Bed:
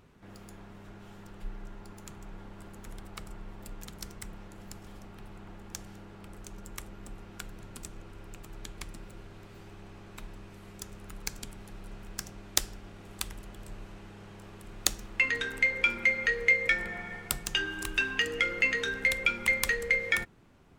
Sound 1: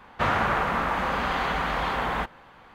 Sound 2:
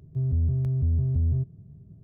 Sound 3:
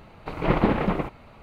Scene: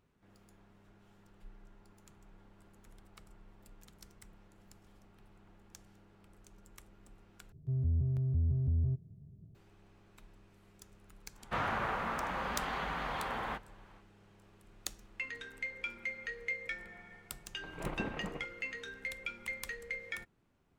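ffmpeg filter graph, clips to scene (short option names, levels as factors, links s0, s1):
-filter_complex "[0:a]volume=0.2[s0];[1:a]flanger=delay=4.6:depth=4.8:regen=-61:speed=0.75:shape=sinusoidal[s1];[s0]asplit=2[s2][s3];[s2]atrim=end=7.524[s4];[2:a]atrim=end=2.03,asetpts=PTS-STARTPTS,volume=0.447[s5];[s3]atrim=start=9.546[s6];[s1]atrim=end=2.74,asetpts=PTS-STARTPTS,volume=0.473,afade=t=in:d=0.1,afade=t=out:st=2.64:d=0.1,adelay=11320[s7];[3:a]atrim=end=1.42,asetpts=PTS-STARTPTS,volume=0.126,afade=t=in:d=0.004:c=hsin,afade=t=out:st=1.416:d=0.004:c=hsin,adelay=17360[s8];[s4][s5]acrossfade=d=0.004:c1=hsin:c2=hsin[s9];[s9][s6]acrossfade=d=0.004:c1=hsin:c2=hsin[s10];[s10][s7][s8]amix=inputs=3:normalize=0"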